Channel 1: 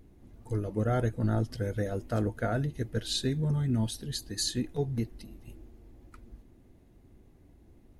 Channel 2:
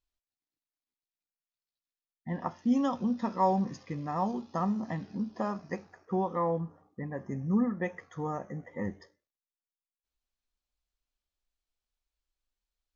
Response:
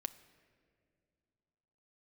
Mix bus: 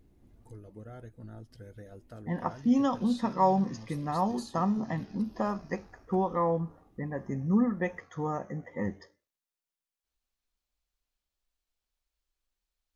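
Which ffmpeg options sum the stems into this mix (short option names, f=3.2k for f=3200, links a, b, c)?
-filter_complex "[0:a]acompressor=threshold=-47dB:ratio=2,volume=-6dB[a];[1:a]volume=2dB[b];[a][b]amix=inputs=2:normalize=0"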